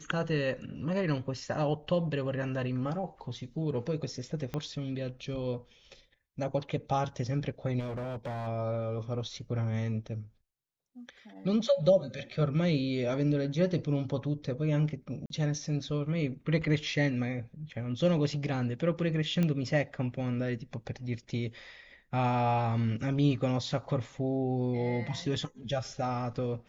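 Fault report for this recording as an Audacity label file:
4.540000	4.540000	pop -21 dBFS
7.790000	8.480000	clipped -33.5 dBFS
15.260000	15.300000	gap 42 ms
19.430000	19.430000	pop -18 dBFS

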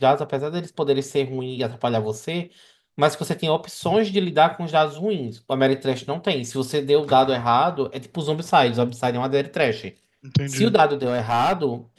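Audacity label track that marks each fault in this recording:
11.030000	11.630000	clipped -15.5 dBFS

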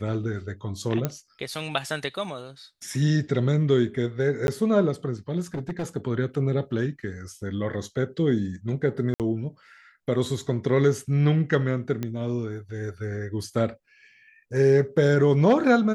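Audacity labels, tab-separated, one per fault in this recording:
1.050000	1.050000	pop -11 dBFS
4.470000	4.480000	gap 11 ms
5.540000	5.850000	clipped -25.5 dBFS
9.140000	9.200000	gap 58 ms
12.030000	12.030000	pop -16 dBFS

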